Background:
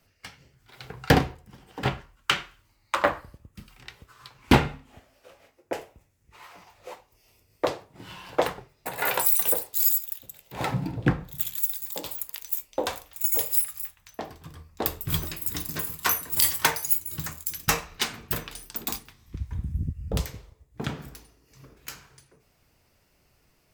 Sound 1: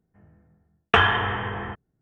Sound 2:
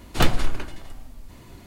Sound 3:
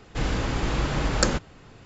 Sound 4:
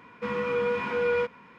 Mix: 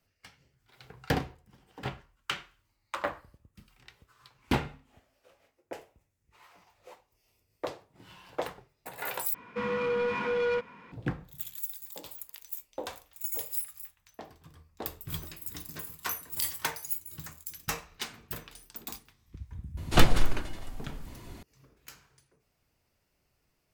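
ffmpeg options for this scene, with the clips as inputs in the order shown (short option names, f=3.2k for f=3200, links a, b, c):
-filter_complex "[0:a]volume=-10dB[a];[4:a]asoftclip=type=tanh:threshold=-23.5dB[b];[a]asplit=2[c][d];[c]atrim=end=9.344[e];[b]atrim=end=1.58[f];[d]atrim=start=10.916[g];[2:a]atrim=end=1.66,asetpts=PTS-STARTPTS,volume=-1dB,afade=t=in:d=0.004:c=hsin,afade=t=out:st=1.656:d=0.004:c=hsin,adelay=19770[h];[e][f]acrossfade=d=0.004:c1=hsin:c2=hsin[i];[i][g]acrossfade=d=0.004:c1=hsin:c2=hsin[j];[j][h]amix=inputs=2:normalize=0"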